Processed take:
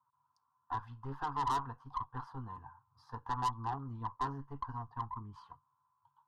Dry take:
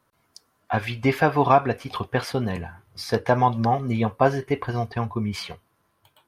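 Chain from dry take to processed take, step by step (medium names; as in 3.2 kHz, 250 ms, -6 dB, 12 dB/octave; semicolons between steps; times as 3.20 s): two resonant band-passes 370 Hz, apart 2.8 oct; valve stage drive 30 dB, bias 0.6; static phaser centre 610 Hz, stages 6; trim +2.5 dB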